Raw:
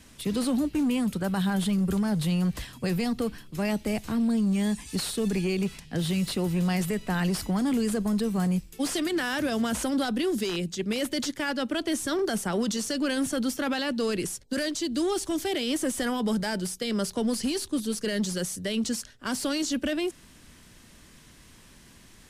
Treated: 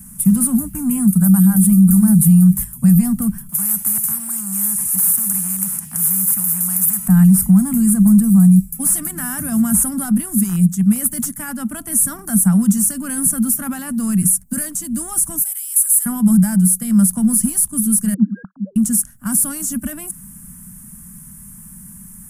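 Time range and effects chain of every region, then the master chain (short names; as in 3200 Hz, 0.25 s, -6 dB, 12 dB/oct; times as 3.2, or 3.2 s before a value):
1.12–2.79 gate -37 dBFS, range -7 dB + high shelf 7500 Hz +8.5 dB + notches 50/100/150/200/250/300/350 Hz
3.49–7.08 HPF 180 Hz + spectral compressor 4:1
15.41–16.06 HPF 810 Hz 24 dB/oct + differentiator + notch 1800 Hz, Q 24
18.14–18.76 sine-wave speech + brick-wall FIR low-pass 1700 Hz + bell 300 Hz -4.5 dB 1.3 oct
whole clip: EQ curve 120 Hz 0 dB, 190 Hz +12 dB, 410 Hz -30 dB, 710 Hz -12 dB, 1300 Hz -7 dB, 4100 Hz -26 dB, 10000 Hz +15 dB; maximiser +13 dB; gain -3 dB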